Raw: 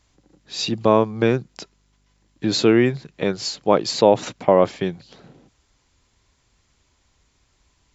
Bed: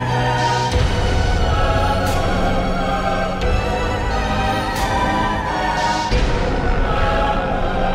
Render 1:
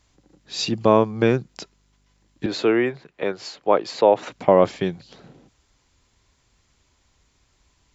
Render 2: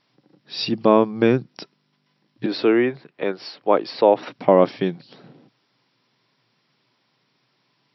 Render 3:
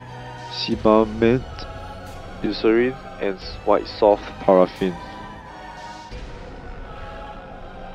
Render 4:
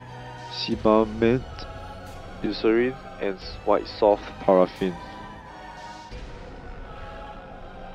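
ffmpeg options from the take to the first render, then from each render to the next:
-filter_complex "[0:a]asettb=1/sr,asplit=3[a][b][c];[a]atrim=end=0.644[d];[b]atrim=start=0.64:end=1.38,asetpts=PTS-STARTPTS,afade=t=in:d=0.004:c=qsin,afade=t=out:st=0.736:d=0.004:c=qsin,bandreject=f=3.8k:w=12[e];[c]atrim=start=1.376[f];[d][e]acrossfade=d=0.004:c1=hsin:c2=qsin[g];[g][f]acrossfade=d=0.004:c1=qsin:c2=hsin,asettb=1/sr,asplit=3[h][i][j];[h]atrim=end=2.464[k];[i]atrim=start=2.46:end=4.32,asetpts=PTS-STARTPTS,afade=t=in:d=0.004:c=qsin,afade=t=out:st=1.856:d=0.004:c=qsin,acrossover=split=330 2900:gain=0.224 1 0.251[l][m][n];[l][m][n]amix=inputs=3:normalize=0[o];[j]atrim=start=4.316[p];[k][o]acrossfade=d=0.004:c1=hsin:c2=qsin[q];[q][p]acrossfade=d=0.004:c1=qsin:c2=hsin"
-af "afftfilt=real='re*between(b*sr/4096,110,5700)':imag='im*between(b*sr/4096,110,5700)':win_size=4096:overlap=0.75,adynamicequalizer=threshold=0.0251:dfrequency=280:dqfactor=2.4:tfrequency=280:tqfactor=2.4:attack=5:release=100:ratio=0.375:range=2.5:mode=boostabove:tftype=bell"
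-filter_complex "[1:a]volume=-18dB[a];[0:a][a]amix=inputs=2:normalize=0"
-af "volume=-3.5dB"

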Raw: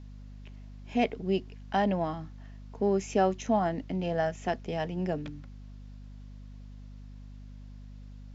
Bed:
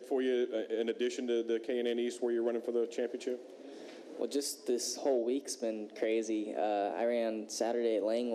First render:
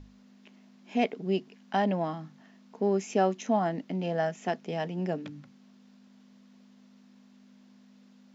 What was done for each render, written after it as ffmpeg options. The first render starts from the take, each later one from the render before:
-af "bandreject=f=50:t=h:w=6,bandreject=f=100:t=h:w=6,bandreject=f=150:t=h:w=6"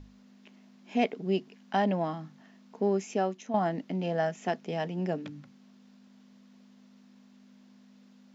-filter_complex "[0:a]asplit=2[a][b];[a]atrim=end=3.54,asetpts=PTS-STARTPTS,afade=t=out:st=2.83:d=0.71:silence=0.334965[c];[b]atrim=start=3.54,asetpts=PTS-STARTPTS,afade=t=in:d=0.004:c=hsin:silence=0.334965[d];[c][d]concat=n=2:v=0:a=1"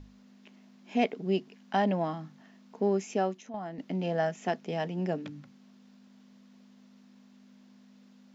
-filter_complex "[0:a]asettb=1/sr,asplit=3[a][b][c];[a]atrim=end=3.344[d];[b]atrim=start=3.34:end=3.79,asetpts=PTS-STARTPTS,afade=t=in:d=0.004:c=qsin,afade=t=out:st=0.446:d=0.004:c=qsin,acompressor=threshold=-53dB:ratio=1.5:attack=3.2:release=140:knee=1:detection=peak[e];[c]atrim=start=3.786[f];[d][e]acrossfade=d=0.004:c1=hsin:c2=qsin[g];[g][f]acrossfade=d=0.004:c1=qsin:c2=hsin"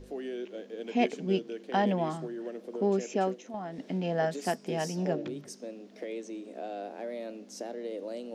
-filter_complex "[1:a]volume=-6dB[a];[0:a][a]amix=inputs=2:normalize=0"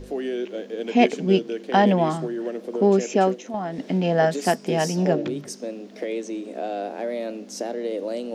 -af "volume=9.5dB"

